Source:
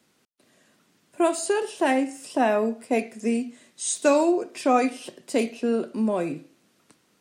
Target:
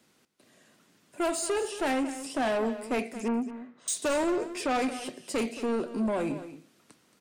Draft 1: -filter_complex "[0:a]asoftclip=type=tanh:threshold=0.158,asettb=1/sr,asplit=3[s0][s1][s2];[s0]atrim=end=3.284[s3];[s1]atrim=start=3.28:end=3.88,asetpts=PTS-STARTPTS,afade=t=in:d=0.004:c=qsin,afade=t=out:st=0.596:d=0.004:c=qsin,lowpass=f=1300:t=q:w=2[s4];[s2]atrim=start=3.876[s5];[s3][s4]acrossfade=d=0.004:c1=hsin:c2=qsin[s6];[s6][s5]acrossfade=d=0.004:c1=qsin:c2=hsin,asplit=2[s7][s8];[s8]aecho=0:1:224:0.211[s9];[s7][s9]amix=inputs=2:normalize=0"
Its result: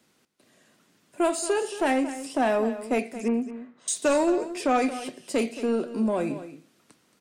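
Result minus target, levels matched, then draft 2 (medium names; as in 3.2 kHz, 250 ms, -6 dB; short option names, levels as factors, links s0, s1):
saturation: distortion -8 dB
-filter_complex "[0:a]asoftclip=type=tanh:threshold=0.0596,asettb=1/sr,asplit=3[s0][s1][s2];[s0]atrim=end=3.284[s3];[s1]atrim=start=3.28:end=3.88,asetpts=PTS-STARTPTS,afade=t=in:d=0.004:c=qsin,afade=t=out:st=0.596:d=0.004:c=qsin,lowpass=f=1300:t=q:w=2[s4];[s2]atrim=start=3.876[s5];[s3][s4]acrossfade=d=0.004:c1=hsin:c2=qsin[s6];[s6][s5]acrossfade=d=0.004:c1=qsin:c2=hsin,asplit=2[s7][s8];[s8]aecho=0:1:224:0.211[s9];[s7][s9]amix=inputs=2:normalize=0"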